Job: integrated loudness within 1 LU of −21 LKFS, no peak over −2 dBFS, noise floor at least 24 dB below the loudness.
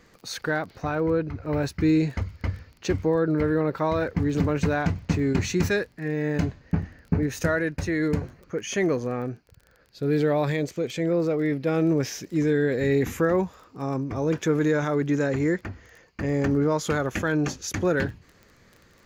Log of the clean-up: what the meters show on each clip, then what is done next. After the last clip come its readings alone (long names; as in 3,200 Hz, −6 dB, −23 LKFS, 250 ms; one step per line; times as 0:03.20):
crackle rate 21 per second; integrated loudness −25.5 LKFS; sample peak −10.0 dBFS; target loudness −21.0 LKFS
→ click removal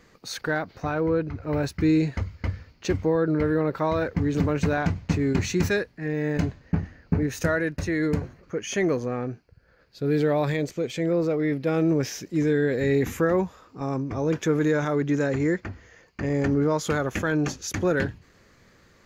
crackle rate 0.052 per second; integrated loudness −25.5 LKFS; sample peak −10.0 dBFS; target loudness −21.0 LKFS
→ level +4.5 dB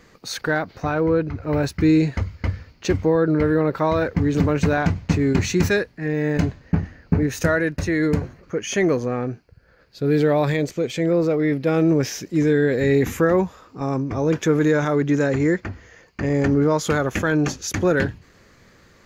integrated loudness −21.0 LKFS; sample peak −5.5 dBFS; background noise floor −54 dBFS